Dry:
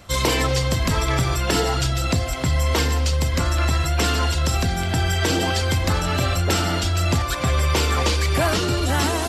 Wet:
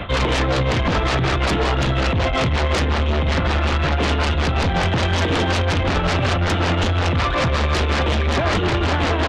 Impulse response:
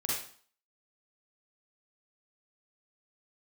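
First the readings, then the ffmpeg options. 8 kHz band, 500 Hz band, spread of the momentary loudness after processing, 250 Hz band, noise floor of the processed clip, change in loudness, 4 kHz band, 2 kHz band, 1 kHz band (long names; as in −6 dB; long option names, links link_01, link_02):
−8.0 dB, +3.5 dB, 1 LU, +3.0 dB, −20 dBFS, +1.5 dB, +0.5 dB, +3.5 dB, +3.5 dB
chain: -filter_complex "[0:a]acrossover=split=170|830[link_01][link_02][link_03];[link_01]acompressor=threshold=-27dB:ratio=4[link_04];[link_02]acompressor=threshold=-28dB:ratio=4[link_05];[link_03]acompressor=threshold=-32dB:ratio=4[link_06];[link_04][link_05][link_06]amix=inputs=3:normalize=0,aresample=8000,asoftclip=type=tanh:threshold=-25.5dB,aresample=44100,tremolo=f=5.4:d=0.7,aeval=exprs='0.0708*sin(PI/2*2.82*val(0)/0.0708)':channel_layout=same,volume=7.5dB"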